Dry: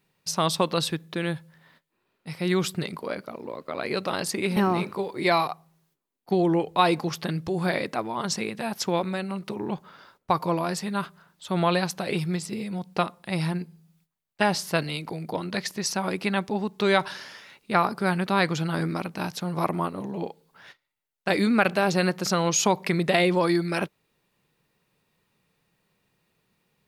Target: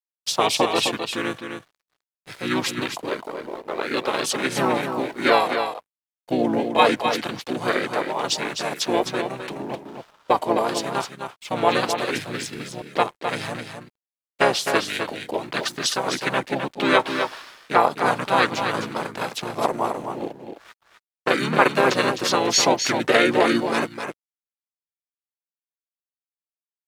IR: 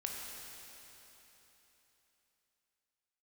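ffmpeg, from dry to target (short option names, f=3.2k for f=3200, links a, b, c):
-filter_complex "[0:a]highpass=410,asplit=3[a][b][c];[b]asetrate=29433,aresample=44100,atempo=1.49831,volume=0dB[d];[c]asetrate=37084,aresample=44100,atempo=1.18921,volume=-2dB[e];[a][d][e]amix=inputs=3:normalize=0,aeval=exprs='sgn(val(0))*max(abs(val(0))-0.00376,0)':c=same,aecho=1:1:258:0.447,volume=1.5dB"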